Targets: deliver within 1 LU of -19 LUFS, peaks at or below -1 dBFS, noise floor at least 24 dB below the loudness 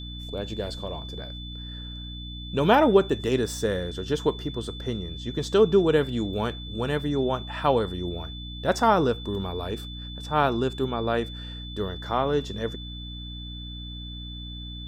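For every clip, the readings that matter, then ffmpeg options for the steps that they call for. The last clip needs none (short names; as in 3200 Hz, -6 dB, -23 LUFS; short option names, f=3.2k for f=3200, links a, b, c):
hum 60 Hz; harmonics up to 300 Hz; hum level -36 dBFS; steady tone 3500 Hz; tone level -40 dBFS; loudness -26.0 LUFS; peak -5.0 dBFS; loudness target -19.0 LUFS
-> -af "bandreject=f=60:t=h:w=6,bandreject=f=120:t=h:w=6,bandreject=f=180:t=h:w=6,bandreject=f=240:t=h:w=6,bandreject=f=300:t=h:w=6"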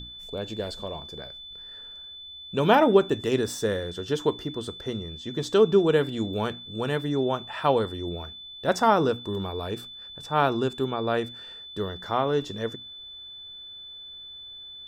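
hum none; steady tone 3500 Hz; tone level -40 dBFS
-> -af "bandreject=f=3.5k:w=30"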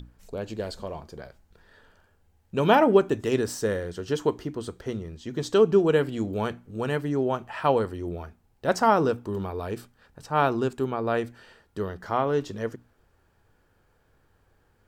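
steady tone none; loudness -26.0 LUFS; peak -5.5 dBFS; loudness target -19.0 LUFS
-> -af "volume=7dB,alimiter=limit=-1dB:level=0:latency=1"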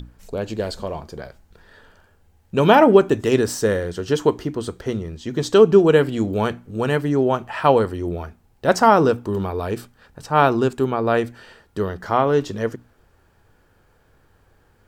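loudness -19.5 LUFS; peak -1.0 dBFS; noise floor -59 dBFS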